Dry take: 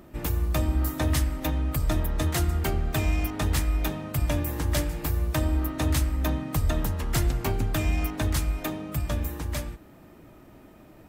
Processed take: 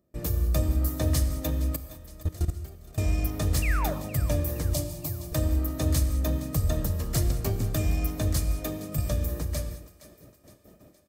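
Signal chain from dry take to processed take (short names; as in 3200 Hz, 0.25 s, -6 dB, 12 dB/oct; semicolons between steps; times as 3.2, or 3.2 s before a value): HPF 57 Hz 12 dB/oct; band shelf 1600 Hz -8.5 dB 2.5 oct; gate with hold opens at -41 dBFS; comb 1.7 ms, depth 32%; 1.76–2.98 level quantiser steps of 23 dB; 3.62–3.94 painted sound fall 520–2900 Hz -33 dBFS; 4.73–5.32 fixed phaser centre 310 Hz, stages 8; thinning echo 0.466 s, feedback 51%, high-pass 420 Hz, level -16 dB; non-linear reverb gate 0.23 s flat, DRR 10.5 dB; 8.98–9.45 three-band squash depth 70%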